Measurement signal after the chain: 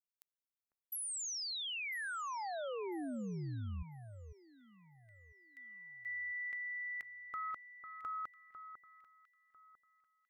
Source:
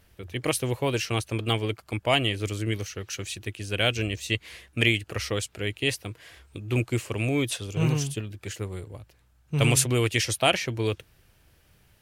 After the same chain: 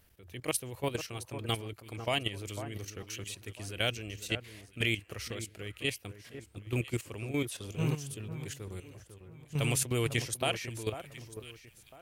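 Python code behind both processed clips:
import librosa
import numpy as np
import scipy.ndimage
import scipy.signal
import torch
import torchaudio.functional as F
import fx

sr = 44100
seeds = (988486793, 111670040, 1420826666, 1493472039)

y = fx.high_shelf(x, sr, hz=10000.0, db=9.5)
y = fx.level_steps(y, sr, step_db=12)
y = fx.echo_alternate(y, sr, ms=499, hz=1700.0, feedback_pct=50, wet_db=-10.0)
y = F.gain(torch.from_numpy(y), -5.0).numpy()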